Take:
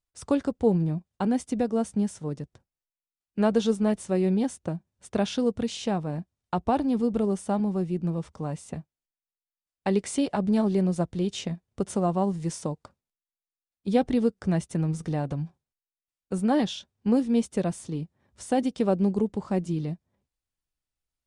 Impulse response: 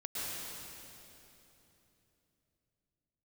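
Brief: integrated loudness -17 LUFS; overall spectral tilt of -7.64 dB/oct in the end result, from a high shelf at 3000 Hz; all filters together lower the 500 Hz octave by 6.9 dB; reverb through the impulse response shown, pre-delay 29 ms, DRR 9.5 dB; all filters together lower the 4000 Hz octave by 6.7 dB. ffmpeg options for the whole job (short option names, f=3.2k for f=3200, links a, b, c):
-filter_complex "[0:a]equalizer=f=500:t=o:g=-8.5,highshelf=f=3k:g=-3,equalizer=f=4k:t=o:g=-6.5,asplit=2[a][b];[1:a]atrim=start_sample=2205,adelay=29[c];[b][c]afir=irnorm=-1:irlink=0,volume=-12.5dB[d];[a][d]amix=inputs=2:normalize=0,volume=12.5dB"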